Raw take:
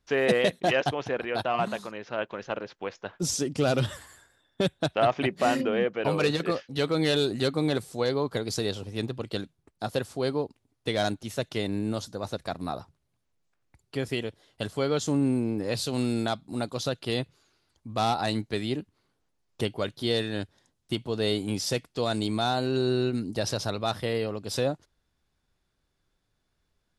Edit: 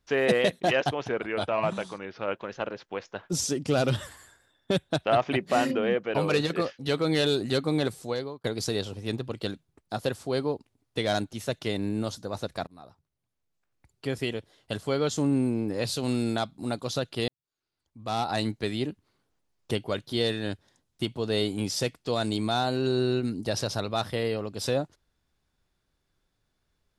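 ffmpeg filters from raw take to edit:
-filter_complex "[0:a]asplit=6[a][b][c][d][e][f];[a]atrim=end=1.094[g];[b]atrim=start=1.09:end=2.25,asetpts=PTS-STARTPTS,asetrate=40572,aresample=44100,atrim=end_sample=55604,asetpts=PTS-STARTPTS[h];[c]atrim=start=2.246:end=8.34,asetpts=PTS-STARTPTS,afade=t=out:st=5.634:d=0.46[i];[d]atrim=start=8.34:end=12.57,asetpts=PTS-STARTPTS,afade=t=in:d=0.004:c=hsin,afade=t=out:st=4.226:d=0.004:c=hsin:silence=0.0707946[j];[e]atrim=start=12.57:end=17.18,asetpts=PTS-STARTPTS,afade=t=in:d=1.44:silence=0.0707946,afade=t=out:st=4.606:d=0.004:c=hsin[k];[f]atrim=start=17.18,asetpts=PTS-STARTPTS,afade=t=in:d=1.08:c=qua[l];[g][h]acrossfade=d=0.004:c1=hsin:c2=hsin[m];[i][j][k][l]concat=n=4:v=0:a=1[n];[m][n]acrossfade=d=0.004:c1=hsin:c2=hsin"

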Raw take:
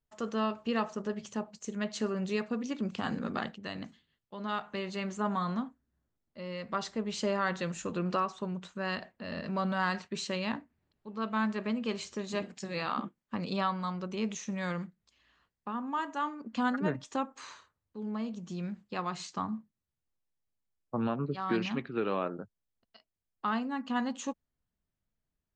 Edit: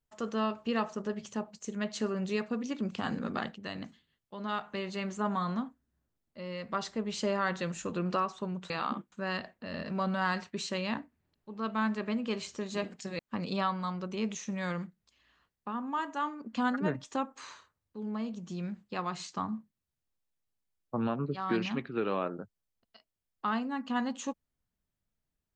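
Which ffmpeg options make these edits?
-filter_complex "[0:a]asplit=4[a][b][c][d];[a]atrim=end=8.702[e];[b]atrim=start=12.768:end=13.192[f];[c]atrim=start=8.698:end=12.772[g];[d]atrim=start=13.188[h];[e][f]acrossfade=d=0.004:c1=hsin:c2=hsin[i];[i][g]acrossfade=d=0.004:c1=hsin:c2=hsin[j];[j][h]acrossfade=d=0.004:c1=hsin:c2=hsin"

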